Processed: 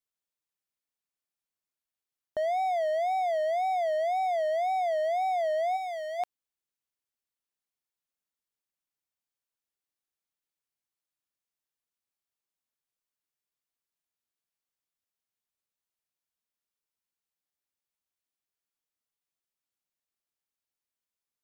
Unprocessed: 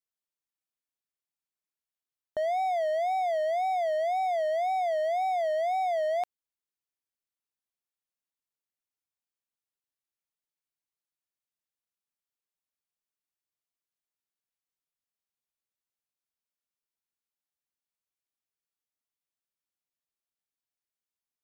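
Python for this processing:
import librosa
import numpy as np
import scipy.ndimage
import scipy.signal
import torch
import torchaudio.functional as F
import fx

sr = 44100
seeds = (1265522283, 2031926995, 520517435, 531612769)

y = fx.highpass(x, sr, hz=1400.0, slope=6, at=(5.76, 6.18), fade=0.02)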